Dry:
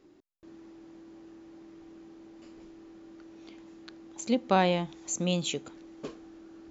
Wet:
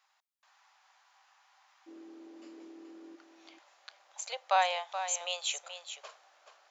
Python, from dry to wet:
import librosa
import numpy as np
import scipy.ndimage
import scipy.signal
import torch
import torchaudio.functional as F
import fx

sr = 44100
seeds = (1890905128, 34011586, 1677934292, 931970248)

y = fx.steep_highpass(x, sr, hz=fx.steps((0.0, 780.0), (1.86, 250.0), (3.15, 610.0)), slope=48)
y = y + 10.0 ** (-10.0 / 20.0) * np.pad(y, (int(427 * sr / 1000.0), 0))[:len(y)]